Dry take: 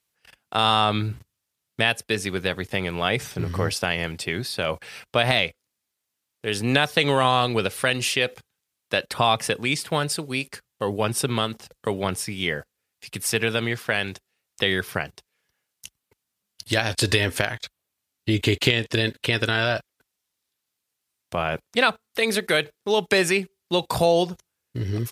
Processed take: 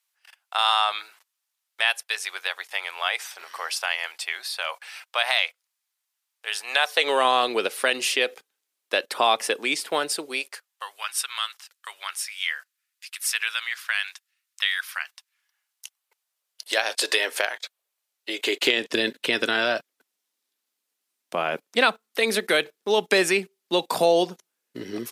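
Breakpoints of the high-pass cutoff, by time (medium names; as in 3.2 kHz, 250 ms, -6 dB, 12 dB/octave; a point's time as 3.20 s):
high-pass 24 dB/octave
6.66 s 780 Hz
7.27 s 300 Hz
10.26 s 300 Hz
10.92 s 1.2 kHz
15.03 s 1.2 kHz
16.65 s 460 Hz
18.37 s 460 Hz
18.91 s 220 Hz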